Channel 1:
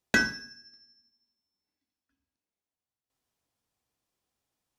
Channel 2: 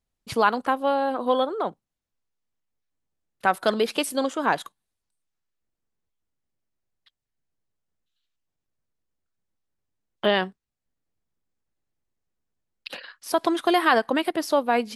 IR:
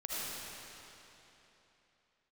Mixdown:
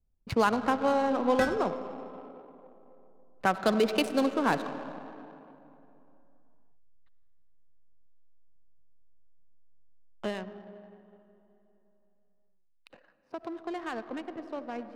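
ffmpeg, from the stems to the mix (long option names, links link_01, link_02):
-filter_complex "[0:a]alimiter=limit=-13dB:level=0:latency=1:release=400,adelay=1250,volume=-5dB[link_01];[1:a]bandreject=frequency=3300:width=8.7,acrossover=split=320|3000[link_02][link_03][link_04];[link_03]acompressor=threshold=-31dB:ratio=1.5[link_05];[link_02][link_05][link_04]amix=inputs=3:normalize=0,volume=-2dB,afade=type=out:start_time=9.8:duration=0.57:silence=0.237137,asplit=2[link_06][link_07];[link_07]volume=-10.5dB[link_08];[2:a]atrim=start_sample=2205[link_09];[link_08][link_09]afir=irnorm=-1:irlink=0[link_10];[link_01][link_06][link_10]amix=inputs=3:normalize=0,lowshelf=frequency=110:gain=11,adynamicsmooth=sensitivity=7:basefreq=870"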